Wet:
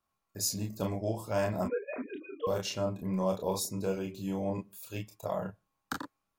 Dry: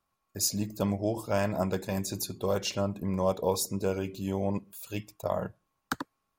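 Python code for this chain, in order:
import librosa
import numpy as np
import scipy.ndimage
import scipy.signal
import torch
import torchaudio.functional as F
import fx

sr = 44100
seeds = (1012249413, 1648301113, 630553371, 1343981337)

p1 = fx.sine_speech(x, sr, at=(1.65, 2.47))
p2 = p1 + fx.room_early_taps(p1, sr, ms=(27, 37), db=(-5.5, -6.5), dry=0)
y = p2 * librosa.db_to_amplitude(-5.0)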